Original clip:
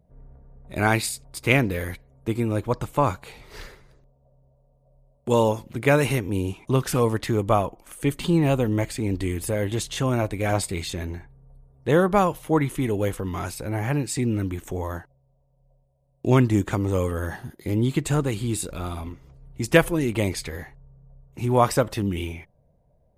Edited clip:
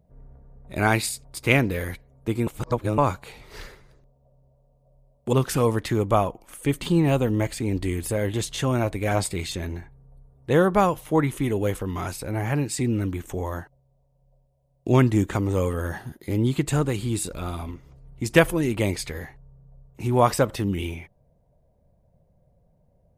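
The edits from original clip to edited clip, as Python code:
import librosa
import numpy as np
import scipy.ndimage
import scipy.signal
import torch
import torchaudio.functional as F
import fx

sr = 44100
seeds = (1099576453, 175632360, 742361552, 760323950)

y = fx.edit(x, sr, fx.reverse_span(start_s=2.47, length_s=0.51),
    fx.cut(start_s=5.33, length_s=1.38), tone=tone)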